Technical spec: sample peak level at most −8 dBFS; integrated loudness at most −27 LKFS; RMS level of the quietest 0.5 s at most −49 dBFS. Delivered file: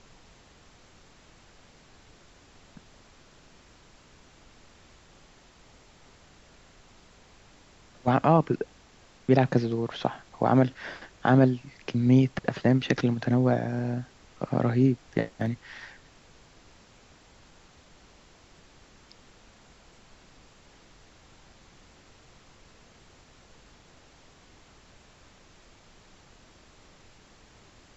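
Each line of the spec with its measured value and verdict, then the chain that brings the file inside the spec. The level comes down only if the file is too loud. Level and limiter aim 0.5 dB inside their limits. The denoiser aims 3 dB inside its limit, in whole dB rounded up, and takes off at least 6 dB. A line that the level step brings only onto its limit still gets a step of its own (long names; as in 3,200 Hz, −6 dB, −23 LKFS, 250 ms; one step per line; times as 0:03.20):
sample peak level −7.0 dBFS: out of spec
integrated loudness −26.0 LKFS: out of spec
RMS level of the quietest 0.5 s −56 dBFS: in spec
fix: level −1.5 dB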